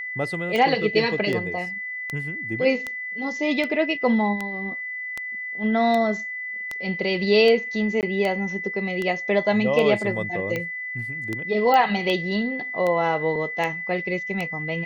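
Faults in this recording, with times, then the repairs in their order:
scratch tick 78 rpm −14 dBFS
whistle 2,000 Hz −29 dBFS
0:08.01–0:08.03: drop-out 18 ms
0:11.74: click −10 dBFS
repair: click removal
notch filter 2,000 Hz, Q 30
repair the gap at 0:08.01, 18 ms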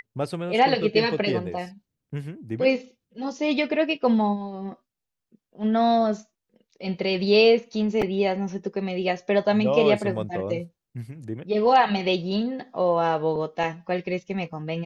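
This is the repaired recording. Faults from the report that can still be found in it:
none of them is left

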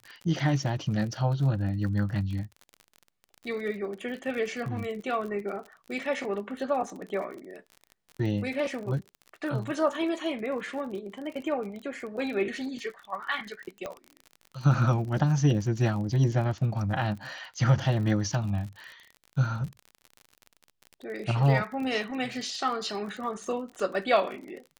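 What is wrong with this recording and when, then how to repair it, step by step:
surface crackle 44 per second −36 dBFS
0:13.86: click −21 dBFS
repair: click removal

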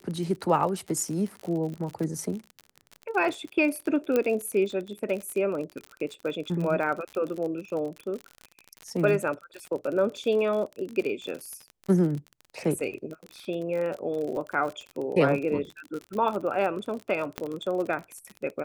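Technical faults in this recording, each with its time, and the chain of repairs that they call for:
surface crackle 46 per second −32 dBFS
0:04.16: click −12 dBFS
0:17.38: click −15 dBFS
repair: click removal

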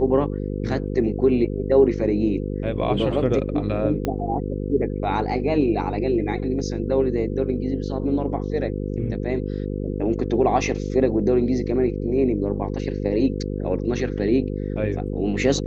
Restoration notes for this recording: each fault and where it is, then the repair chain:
mains buzz 50 Hz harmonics 10 −27 dBFS
0:04.05: click −11 dBFS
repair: click removal
hum removal 50 Hz, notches 10

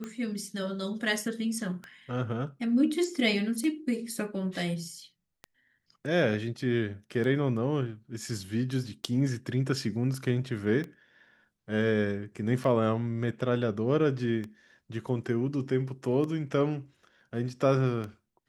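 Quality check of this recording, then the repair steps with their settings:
scratch tick 33 1/3 rpm −24 dBFS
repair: click removal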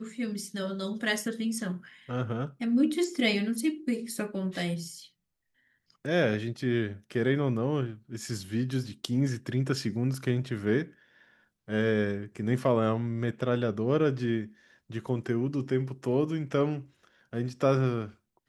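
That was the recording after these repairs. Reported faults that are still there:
none of them is left

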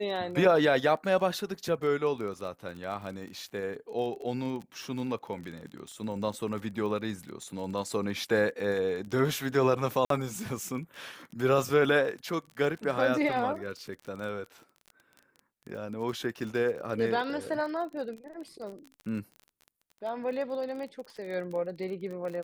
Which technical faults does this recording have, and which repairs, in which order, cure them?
surface crackle 29 per second −37 dBFS
0:10.05–0:10.10: drop-out 53 ms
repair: click removal
repair the gap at 0:10.05, 53 ms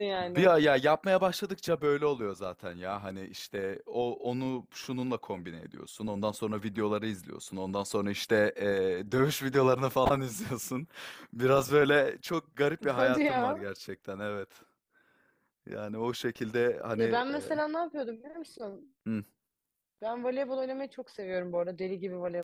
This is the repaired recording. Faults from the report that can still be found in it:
none of them is left

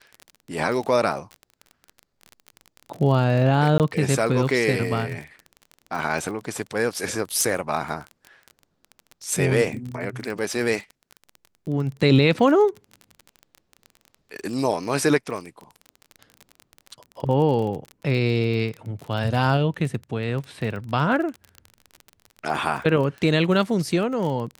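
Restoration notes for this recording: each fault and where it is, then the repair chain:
surface crackle 29 per second −29 dBFS
0:03.78–0:03.80: drop-out 18 ms
0:07.41: click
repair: click removal
repair the gap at 0:03.78, 18 ms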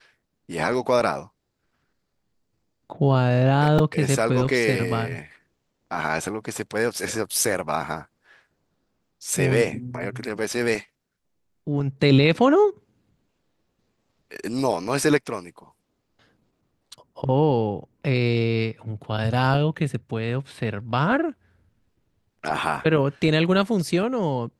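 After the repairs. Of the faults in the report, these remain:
none of them is left

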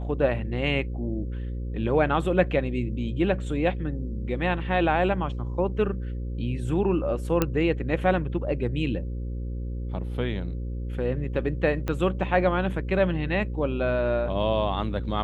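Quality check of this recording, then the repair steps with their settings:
mains buzz 60 Hz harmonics 9 −31 dBFS
0:07.42: click −8 dBFS
0:11.88: click −15 dBFS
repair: click removal
hum removal 60 Hz, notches 9

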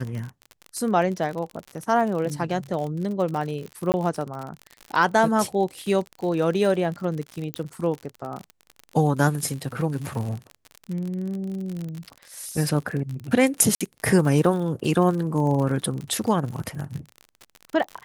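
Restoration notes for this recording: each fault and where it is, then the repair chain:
surface crackle 49 per second −29 dBFS
0:03.92–0:03.94: drop-out 19 ms
0:07.54: click −13 dBFS
0:13.75–0:13.81: drop-out 56 ms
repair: click removal
repair the gap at 0:03.92, 19 ms
repair the gap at 0:13.75, 56 ms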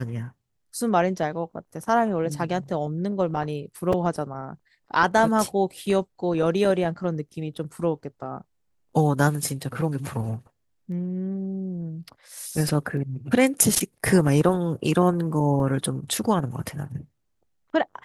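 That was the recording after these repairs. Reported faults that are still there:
none of them is left

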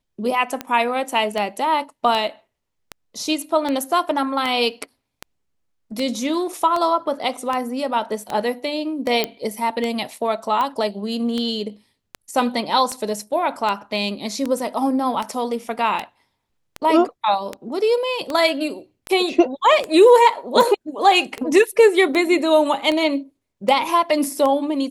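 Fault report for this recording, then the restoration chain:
scratch tick 78 rpm −11 dBFS
0:09.24: click −5 dBFS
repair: click removal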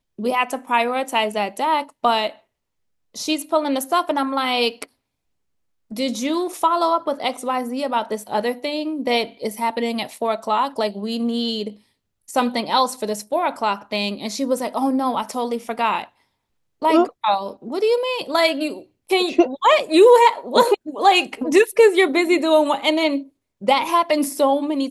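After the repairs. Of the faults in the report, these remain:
none of them is left

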